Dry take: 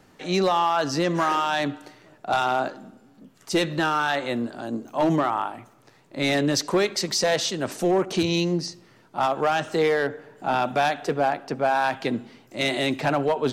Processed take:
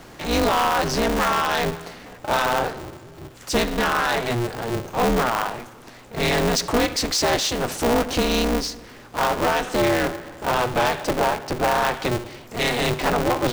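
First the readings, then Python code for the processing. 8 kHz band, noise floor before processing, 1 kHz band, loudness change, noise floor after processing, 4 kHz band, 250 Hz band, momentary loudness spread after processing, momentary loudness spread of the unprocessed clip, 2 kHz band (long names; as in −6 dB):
+4.5 dB, −56 dBFS, +2.0 dB, +2.0 dB, −44 dBFS, +3.5 dB, +1.0 dB, 13 LU, 9 LU, +3.0 dB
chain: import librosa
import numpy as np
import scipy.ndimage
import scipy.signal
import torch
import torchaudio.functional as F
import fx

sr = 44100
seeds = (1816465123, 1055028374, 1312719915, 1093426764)

y = fx.power_curve(x, sr, exponent=0.7)
y = y * np.sign(np.sin(2.0 * np.pi * 120.0 * np.arange(len(y)) / sr))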